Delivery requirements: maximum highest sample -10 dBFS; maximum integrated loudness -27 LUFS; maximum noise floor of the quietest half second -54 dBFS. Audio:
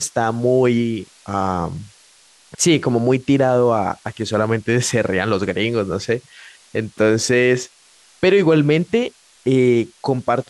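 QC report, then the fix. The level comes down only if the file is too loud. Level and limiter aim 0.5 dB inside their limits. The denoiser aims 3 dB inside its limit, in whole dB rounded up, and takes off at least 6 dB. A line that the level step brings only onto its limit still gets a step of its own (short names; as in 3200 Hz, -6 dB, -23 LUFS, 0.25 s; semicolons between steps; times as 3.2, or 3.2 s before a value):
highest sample -5.5 dBFS: fail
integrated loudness -18.5 LUFS: fail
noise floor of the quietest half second -51 dBFS: fail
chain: gain -9 dB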